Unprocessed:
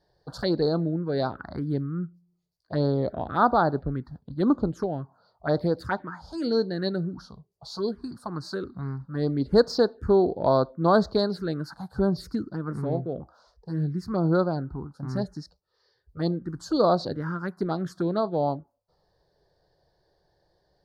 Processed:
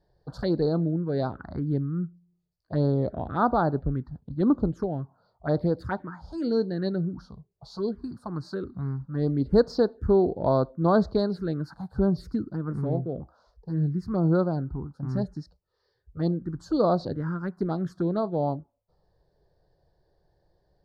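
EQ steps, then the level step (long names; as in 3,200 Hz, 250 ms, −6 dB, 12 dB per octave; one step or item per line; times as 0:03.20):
spectral tilt −2 dB per octave
−3.5 dB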